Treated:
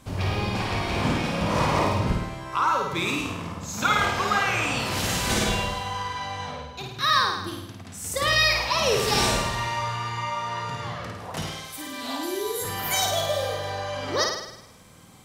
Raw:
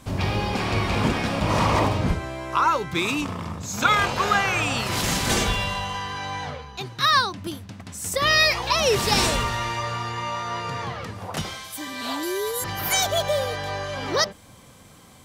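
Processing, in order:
flutter between parallel walls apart 9 metres, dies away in 0.83 s
level −4 dB

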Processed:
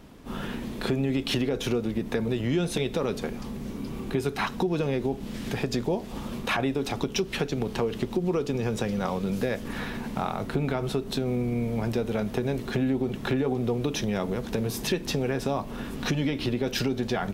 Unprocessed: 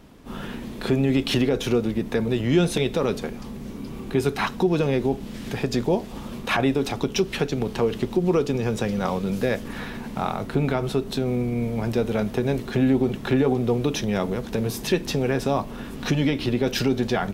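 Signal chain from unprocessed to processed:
downward compressor 2.5 to 1, threshold −25 dBFS, peak gain reduction 7.5 dB

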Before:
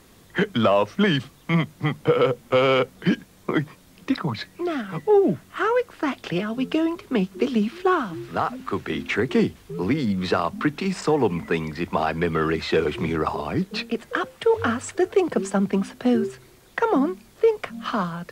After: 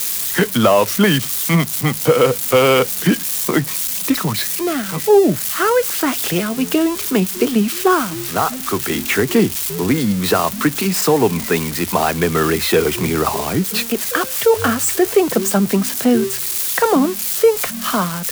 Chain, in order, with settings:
spike at every zero crossing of −19 dBFS
level +6 dB

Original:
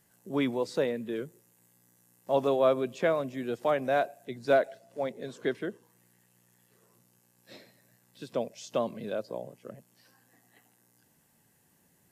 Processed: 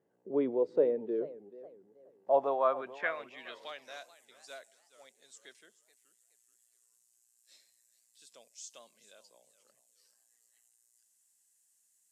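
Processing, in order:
band-pass filter sweep 440 Hz → 7,700 Hz, 0:02.00–0:04.17
feedback echo with a swinging delay time 428 ms, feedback 32%, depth 214 cents, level −17 dB
level +3.5 dB

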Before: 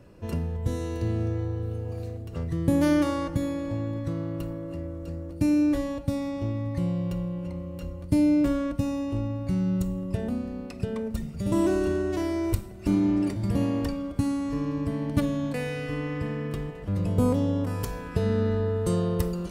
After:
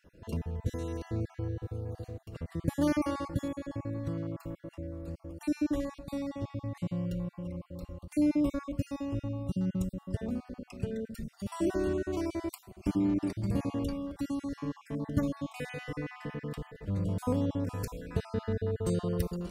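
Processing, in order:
time-frequency cells dropped at random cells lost 33%
level −4.5 dB

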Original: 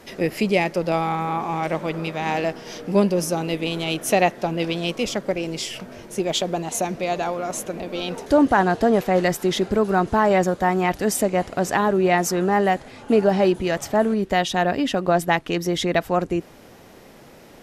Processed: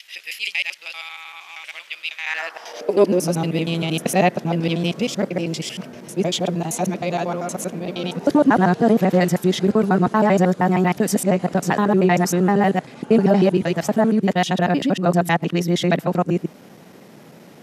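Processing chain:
reversed piece by piece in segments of 78 ms
high-pass filter sweep 2,800 Hz → 160 Hz, 0:02.13–0:03.34

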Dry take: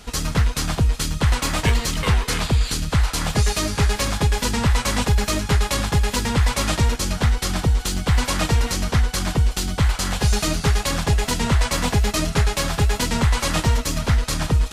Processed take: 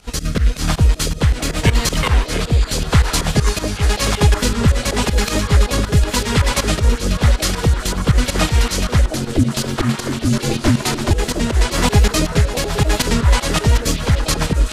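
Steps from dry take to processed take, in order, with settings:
fake sidechain pumping 159 BPM, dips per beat 2, −18 dB, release 106 ms
rotating-speaker cabinet horn 0.9 Hz, later 7.5 Hz, at 0:12.92
0:09.13–0:11.11: ring modulation 180 Hz
echo through a band-pass that steps 707 ms, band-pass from 470 Hz, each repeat 1.4 octaves, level −2 dB
level +7 dB

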